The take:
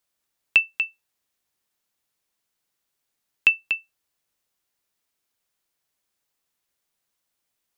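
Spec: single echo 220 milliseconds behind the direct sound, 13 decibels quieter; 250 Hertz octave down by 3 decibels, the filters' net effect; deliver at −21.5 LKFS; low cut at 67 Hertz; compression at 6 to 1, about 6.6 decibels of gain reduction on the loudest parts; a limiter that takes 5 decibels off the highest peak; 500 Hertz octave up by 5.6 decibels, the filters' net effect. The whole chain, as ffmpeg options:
ffmpeg -i in.wav -af "highpass=67,equalizer=frequency=250:width_type=o:gain=-8,equalizer=frequency=500:width_type=o:gain=9,acompressor=threshold=-20dB:ratio=6,alimiter=limit=-10dB:level=0:latency=1,aecho=1:1:220:0.224,volume=9dB" out.wav

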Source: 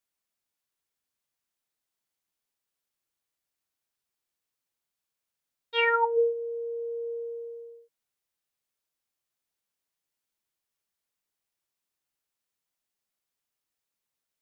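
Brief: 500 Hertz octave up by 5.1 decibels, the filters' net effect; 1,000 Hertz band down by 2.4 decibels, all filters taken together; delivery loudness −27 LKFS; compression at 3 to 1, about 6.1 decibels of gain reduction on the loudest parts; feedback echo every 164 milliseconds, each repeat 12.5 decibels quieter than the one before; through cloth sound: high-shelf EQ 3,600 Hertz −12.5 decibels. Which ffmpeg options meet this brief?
ffmpeg -i in.wav -af "equalizer=frequency=500:width_type=o:gain=6,equalizer=frequency=1000:width_type=o:gain=-3,acompressor=threshold=-23dB:ratio=3,highshelf=frequency=3600:gain=-12.5,aecho=1:1:164|328|492:0.237|0.0569|0.0137,volume=2.5dB" out.wav

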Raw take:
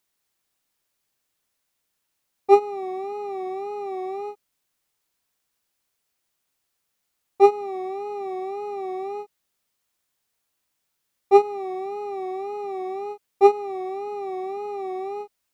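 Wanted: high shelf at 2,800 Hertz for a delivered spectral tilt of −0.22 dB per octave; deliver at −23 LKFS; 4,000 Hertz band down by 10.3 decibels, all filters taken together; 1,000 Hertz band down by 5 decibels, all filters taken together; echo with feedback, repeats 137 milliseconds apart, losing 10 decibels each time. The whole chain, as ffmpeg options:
ffmpeg -i in.wav -af "equalizer=frequency=1000:width_type=o:gain=-6,highshelf=frequency=2800:gain=-7.5,equalizer=frequency=4000:width_type=o:gain=-6.5,aecho=1:1:137|274|411|548:0.316|0.101|0.0324|0.0104,volume=3.5dB" out.wav

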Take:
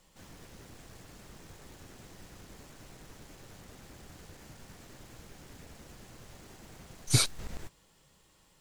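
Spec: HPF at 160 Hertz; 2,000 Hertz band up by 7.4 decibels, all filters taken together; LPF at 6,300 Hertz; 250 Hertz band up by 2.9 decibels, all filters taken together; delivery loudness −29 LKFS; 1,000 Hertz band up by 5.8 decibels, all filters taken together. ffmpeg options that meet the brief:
ffmpeg -i in.wav -af "highpass=160,lowpass=6300,equalizer=frequency=250:width_type=o:gain=6,equalizer=frequency=1000:width_type=o:gain=4.5,equalizer=frequency=2000:width_type=o:gain=8,volume=10.5dB" out.wav

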